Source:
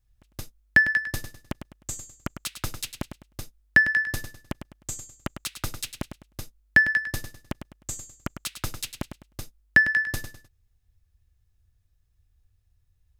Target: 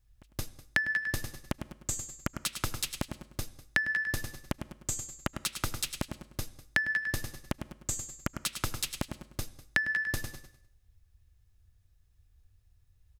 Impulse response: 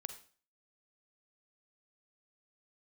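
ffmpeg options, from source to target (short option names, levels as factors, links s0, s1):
-filter_complex "[0:a]asplit=2[s0][s1];[1:a]atrim=start_sample=2205,asetrate=25137,aresample=44100[s2];[s1][s2]afir=irnorm=-1:irlink=0,volume=0.299[s3];[s0][s3]amix=inputs=2:normalize=0,acompressor=threshold=0.0447:ratio=6,asplit=2[s4][s5];[s5]aecho=0:1:199:0.119[s6];[s4][s6]amix=inputs=2:normalize=0"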